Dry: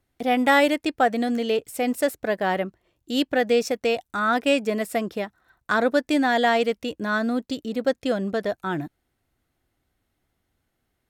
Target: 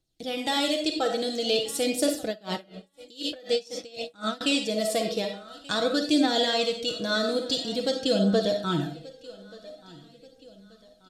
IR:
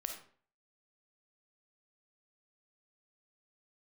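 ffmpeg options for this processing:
-filter_complex "[0:a]alimiter=limit=-12dB:level=0:latency=1:release=481,aecho=1:1:6.2:0.48,aecho=1:1:1182|2364|3546:0.0794|0.0334|0.014[a];[1:a]atrim=start_sample=2205[b];[a][b]afir=irnorm=-1:irlink=0,aphaser=in_gain=1:out_gain=1:delay=2.3:decay=0.33:speed=0.48:type=triangular,lowpass=8.2k,highshelf=f=2.6k:g=9.5,dynaudnorm=f=160:g=5:m=9.5dB,equalizer=f=1k:t=o:w=1:g=-7,equalizer=f=2k:t=o:w=1:g=-12,equalizer=f=4k:t=o:w=1:g=7,asettb=1/sr,asplit=3[c][d][e];[c]atrim=end=2.284[f];[d]atrim=start=2.28:end=4.41,asetpts=PTS-STARTPTS,afade=t=in:d=0.004:c=qsin,afade=t=out:st=2.126:d=0.004:c=qsin,aeval=exprs='val(0)*pow(10,-26*(0.5-0.5*cos(2*PI*4*n/s))/20)':c=same[g];[e]atrim=start=4.406[h];[f][g]acrossfade=d=0.004:c1=hsin:c2=qsin[i];[i][h]acrossfade=d=0.004:c1=qsin:c2=hsin,volume=-7dB"

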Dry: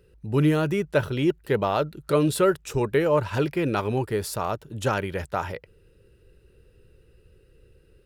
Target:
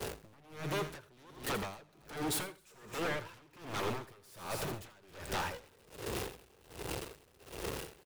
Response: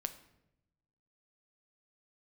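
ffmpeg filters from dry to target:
-af "aeval=exprs='val(0)+0.5*0.0168*sgn(val(0))':c=same,highpass=f=100:p=1,bass=f=250:g=-4,treble=f=4k:g=2,agate=range=-33dB:threshold=-40dB:ratio=3:detection=peak,acompressor=threshold=-34dB:ratio=10,aeval=exprs='0.0133*(abs(mod(val(0)/0.0133+3,4)-2)-1)':c=same,aecho=1:1:82|134|210|265:0.299|0.168|0.112|0.299,aeval=exprs='val(0)*pow(10,-28*(0.5-0.5*cos(2*PI*1.3*n/s))/20)':c=same,volume=8.5dB"

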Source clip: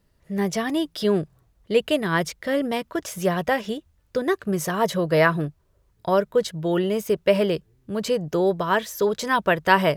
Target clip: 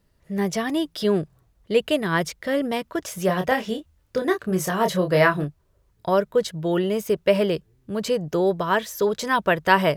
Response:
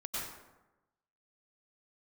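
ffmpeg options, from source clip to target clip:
-filter_complex "[0:a]asettb=1/sr,asplit=3[a][b][c];[a]atrim=end=3.264[d];[b]atrim=start=3.26:end=5.44,asetpts=PTS-STARTPTS,afade=t=in:d=0.004:c=qsin,afade=t=out:st=2.176:d=0.004:c=qsin,asplit=2[e][f];[f]adelay=27,volume=-6dB[g];[e][g]amix=inputs=2:normalize=0,atrim=end_sample=96138[h];[c]atrim=start=5.436[i];[d][h]acrossfade=d=0.004:c1=hsin:c2=qsin[j];[j][i]acrossfade=d=0.004:c1=qsin:c2=hsin"

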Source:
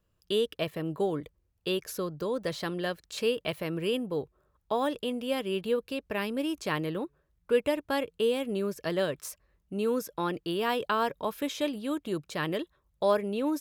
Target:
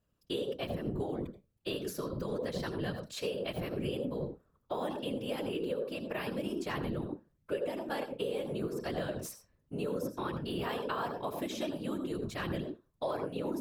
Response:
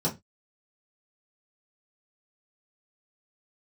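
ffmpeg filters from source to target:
-filter_complex "[0:a]asplit=2[a][b];[1:a]atrim=start_sample=2205,adelay=79[c];[b][c]afir=irnorm=-1:irlink=0,volume=-16.5dB[d];[a][d]amix=inputs=2:normalize=0,afftfilt=real='hypot(re,im)*cos(2*PI*random(0))':imag='hypot(re,im)*sin(2*PI*random(1))':win_size=512:overlap=0.75,acompressor=threshold=-34dB:ratio=4,volume=2dB"

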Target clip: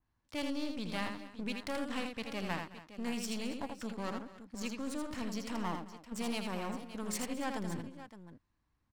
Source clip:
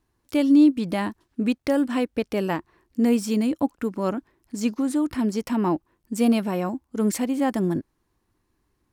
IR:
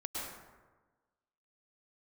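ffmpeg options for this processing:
-filter_complex "[0:a]equalizer=f=380:t=o:w=0.61:g=-12,acrossover=split=670[a][b];[a]alimiter=level_in=0.5dB:limit=-24dB:level=0:latency=1,volume=-0.5dB[c];[c][b]amix=inputs=2:normalize=0,adynamicsmooth=sensitivity=5.5:basefreq=5.8k,aeval=exprs='clip(val(0),-1,0.015)':c=same,aecho=1:1:81|216|276|566:0.531|0.106|0.133|0.224,adynamicequalizer=threshold=0.00398:dfrequency=2700:dqfactor=0.7:tfrequency=2700:tqfactor=0.7:attack=5:release=100:ratio=0.375:range=3:mode=boostabove:tftype=highshelf,volume=-8dB"

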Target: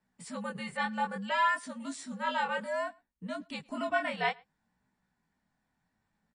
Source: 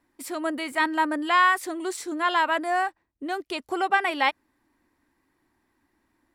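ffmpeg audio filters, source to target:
-filter_complex "[0:a]asettb=1/sr,asplit=3[a][b][c];[a]atrim=end=0.744[d];[b]atrim=start=0.74:end=2.74,asetpts=PTS-STARTPTS,afade=t=in:d=0.004:c=qsin,afade=t=out:st=1.996:d=0.004:c=qsin,adynamicequalizer=threshold=0.00891:dfrequency=220:dqfactor=0.82:tfrequency=220:tqfactor=0.82:attack=5:release=100:ratio=0.375:range=2:mode=cutabove:tftype=bell[e];[c]atrim=start=2.736[f];[d][e]acrossfade=d=0.004:c1=hsin:c2=qsin[g];[g][f]acrossfade=d=0.004:c1=qsin:c2=hsin,afreqshift=-100,flanger=delay=16:depth=7.6:speed=0.61,asplit=2[h][i];[i]adelay=110.8,volume=-27dB,highshelf=f=4k:g=-2.49[j];[h][j]amix=inputs=2:normalize=0,volume=-5dB" -ar 22050 -c:a libmp3lame -b:a 40k

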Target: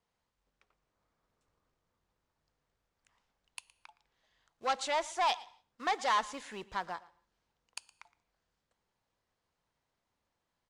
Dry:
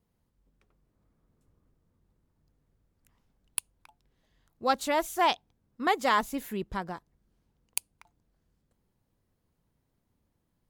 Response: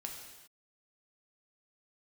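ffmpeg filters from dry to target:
-filter_complex "[0:a]aresample=22050,aresample=44100,acrusher=bits=6:mode=log:mix=0:aa=0.000001,asoftclip=type=tanh:threshold=-25dB,acrossover=split=570 7900:gain=0.158 1 0.0891[a][b][c];[a][b][c]amix=inputs=3:normalize=0,aecho=1:1:116:0.0944,asplit=2[d][e];[1:a]atrim=start_sample=2205,asetrate=61740,aresample=44100[f];[e][f]afir=irnorm=-1:irlink=0,volume=-12dB[g];[d][g]amix=inputs=2:normalize=0,volume=1dB"

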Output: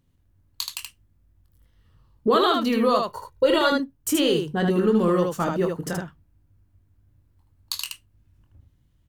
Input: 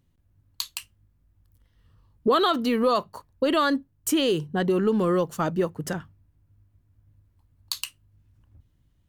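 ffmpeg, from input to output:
-filter_complex "[0:a]asettb=1/sr,asplit=3[a][b][c];[a]atrim=end=3.024[d];[b]atrim=start=3.02:end=3.72,asetpts=PTS-STARTPTS,afade=t=in:d=0.004:c=qsin,afade=t=out:st=0.696:d=0.004:c=qsin,aecho=1:1:2.1:0.78,atrim=end_sample=30870[e];[c]atrim=start=3.716[f];[d][e]acrossfade=d=0.004:c1=hsin:c2=qsin[g];[g][f]acrossfade=d=0.004:c1=qsin:c2=hsin,aecho=1:1:23|77:0.398|0.631"

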